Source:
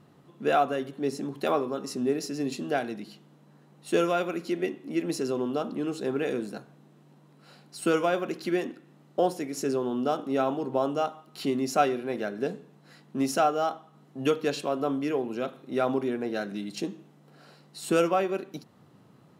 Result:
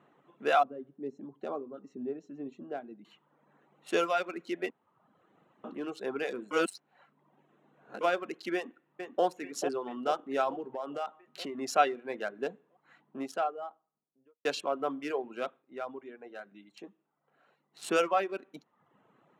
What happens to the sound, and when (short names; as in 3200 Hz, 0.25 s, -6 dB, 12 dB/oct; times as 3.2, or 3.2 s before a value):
0.63–3.05 EQ curve 230 Hz 0 dB, 2200 Hz -18 dB, 6100 Hz -14 dB, 11000 Hz -29 dB
4.7–5.64 room tone
6.51–8.01 reverse
8.55–9.24 echo throw 0.44 s, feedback 65%, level -7 dB
10.61–11.58 compressor 12:1, threshold -27 dBFS
12.54–14.45 studio fade out
15.5–17.85 dip -9.5 dB, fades 0.14 s
whole clip: Wiener smoothing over 9 samples; weighting filter A; reverb removal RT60 0.81 s